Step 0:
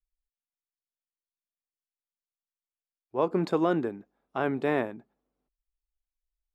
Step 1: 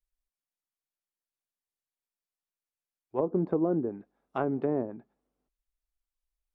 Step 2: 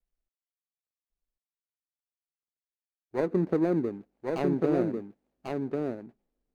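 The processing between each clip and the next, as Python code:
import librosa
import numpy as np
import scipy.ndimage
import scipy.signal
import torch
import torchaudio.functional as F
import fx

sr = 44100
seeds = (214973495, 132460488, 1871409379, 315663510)

y1 = fx.env_lowpass_down(x, sr, base_hz=520.0, full_db=-23.5)
y1 = fx.peak_eq(y1, sr, hz=4300.0, db=-2.5, octaves=1.9)
y2 = scipy.signal.medfilt(y1, 41)
y2 = y2 + 10.0 ** (-3.5 / 20.0) * np.pad(y2, (int(1095 * sr / 1000.0), 0))[:len(y2)]
y2 = F.gain(torch.from_numpy(y2), 2.0).numpy()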